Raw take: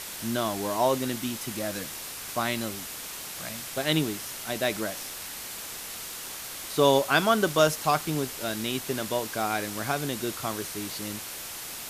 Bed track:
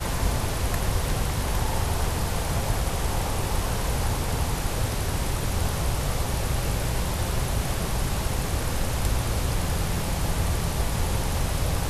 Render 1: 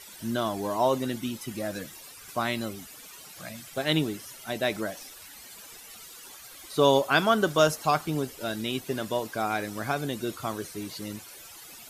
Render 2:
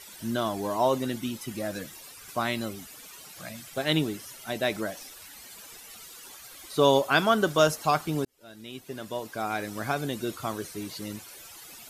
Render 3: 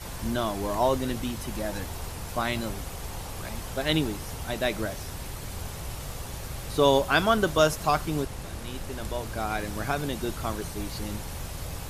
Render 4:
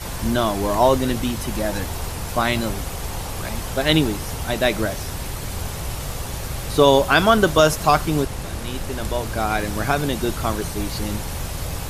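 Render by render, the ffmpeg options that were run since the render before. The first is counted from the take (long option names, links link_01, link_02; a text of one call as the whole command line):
ffmpeg -i in.wav -af "afftdn=noise_reduction=14:noise_floor=-39" out.wav
ffmpeg -i in.wav -filter_complex "[0:a]asplit=2[link_01][link_02];[link_01]atrim=end=8.25,asetpts=PTS-STARTPTS,afade=type=out:start_time=8.246:duration=0.004:curve=hsin[link_03];[link_02]atrim=start=8.25,asetpts=PTS-STARTPTS,afade=type=in:duration=1.58[link_04];[link_03][link_04]concat=n=2:v=0:a=1" out.wav
ffmpeg -i in.wav -i bed.wav -filter_complex "[1:a]volume=-11dB[link_01];[0:a][link_01]amix=inputs=2:normalize=0" out.wav
ffmpeg -i in.wav -af "volume=8dB,alimiter=limit=-2dB:level=0:latency=1" out.wav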